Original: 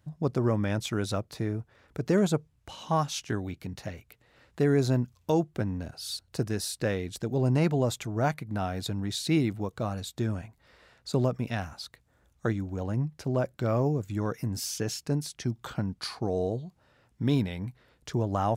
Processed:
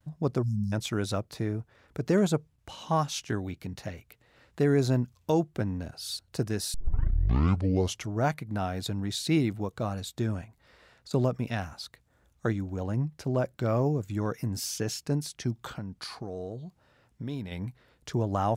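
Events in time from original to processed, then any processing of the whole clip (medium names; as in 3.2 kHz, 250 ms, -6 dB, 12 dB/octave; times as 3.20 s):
0.42–0.73 s: spectral selection erased 230–3900 Hz
6.74 s: tape start 1.41 s
10.44–11.11 s: compression, threshold -45 dBFS
15.73–17.52 s: compression 2.5:1, threshold -36 dBFS
whole clip: gate with hold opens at -59 dBFS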